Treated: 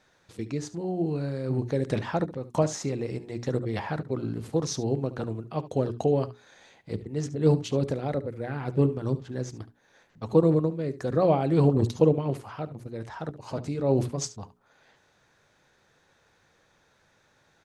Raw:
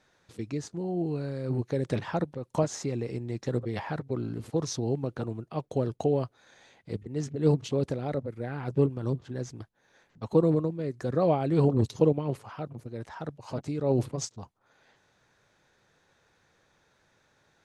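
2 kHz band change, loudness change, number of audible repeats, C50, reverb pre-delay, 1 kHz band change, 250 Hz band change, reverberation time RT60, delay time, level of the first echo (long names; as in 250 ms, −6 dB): +2.5 dB, +2.0 dB, 1, no reverb audible, no reverb audible, +2.5 dB, +2.0 dB, no reverb audible, 71 ms, −16.0 dB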